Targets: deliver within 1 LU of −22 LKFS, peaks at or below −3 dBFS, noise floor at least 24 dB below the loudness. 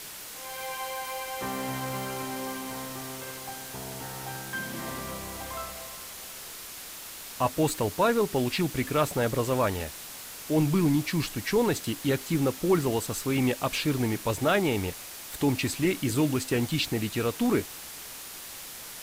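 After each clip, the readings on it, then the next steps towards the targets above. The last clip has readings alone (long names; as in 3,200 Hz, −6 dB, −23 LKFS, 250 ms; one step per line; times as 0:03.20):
background noise floor −42 dBFS; target noise floor −54 dBFS; integrated loudness −29.5 LKFS; sample peak −12.5 dBFS; target loudness −22.0 LKFS
→ noise reduction from a noise print 12 dB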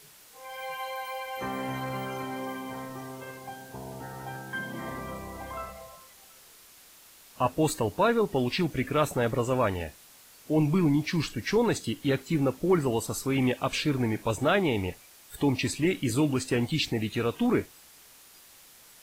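background noise floor −54 dBFS; integrated loudness −28.5 LKFS; sample peak −12.5 dBFS; target loudness −22.0 LKFS
→ level +6.5 dB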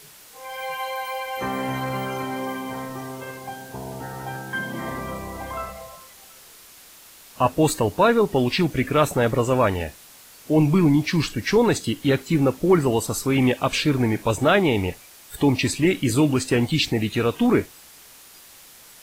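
integrated loudness −22.0 LKFS; sample peak −6.0 dBFS; background noise floor −47 dBFS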